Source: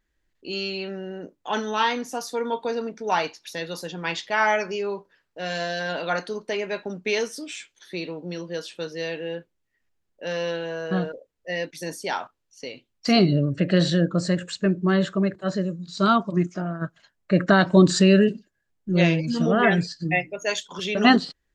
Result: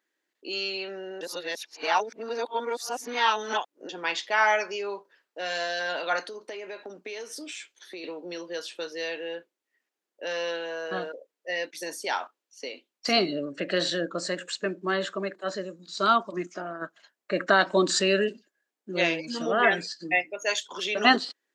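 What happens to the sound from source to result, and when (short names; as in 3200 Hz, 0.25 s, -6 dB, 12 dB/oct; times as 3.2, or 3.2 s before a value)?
1.21–3.89 reverse
6.28–8.04 compressor, threshold -34 dBFS
whole clip: HPF 290 Hz 24 dB/oct; dynamic EQ 370 Hz, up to -5 dB, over -36 dBFS, Q 0.95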